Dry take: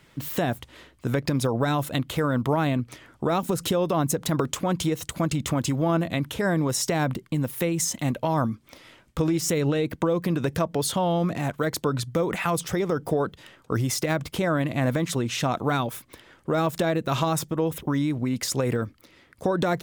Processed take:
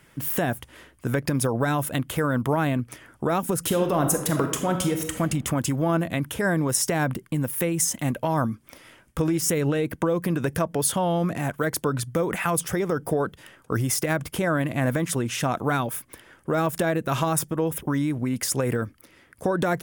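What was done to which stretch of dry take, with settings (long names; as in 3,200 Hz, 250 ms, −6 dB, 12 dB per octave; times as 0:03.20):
0:03.60–0:05.20: thrown reverb, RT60 0.9 s, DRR 5 dB
whole clip: thirty-one-band graphic EQ 1,600 Hz +4 dB, 4,000 Hz −7 dB, 10,000 Hz +9 dB, 16,000 Hz +9 dB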